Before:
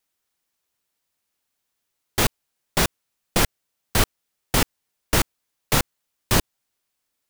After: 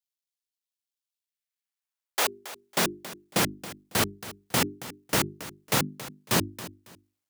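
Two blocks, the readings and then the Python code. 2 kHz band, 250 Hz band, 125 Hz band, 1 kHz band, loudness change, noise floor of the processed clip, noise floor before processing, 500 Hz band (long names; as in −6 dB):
−3.5 dB, −3.0 dB, −7.0 dB, −3.5 dB, −4.0 dB, below −85 dBFS, −79 dBFS, −3.5 dB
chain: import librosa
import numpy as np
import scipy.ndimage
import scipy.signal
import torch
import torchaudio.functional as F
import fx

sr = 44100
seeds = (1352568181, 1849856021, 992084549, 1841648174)

p1 = fx.law_mismatch(x, sr, coded='A')
p2 = fx.hum_notches(p1, sr, base_hz=50, count=8)
p3 = fx.filter_sweep_highpass(p2, sr, from_hz=3300.0, to_hz=150.0, start_s=1.16, end_s=3.06, q=1.1)
p4 = p3 + fx.echo_feedback(p3, sr, ms=276, feedback_pct=25, wet_db=-16, dry=0)
p5 = fx.transient(p4, sr, attack_db=0, sustain_db=6)
y = p5 * 10.0 ** (-3.5 / 20.0)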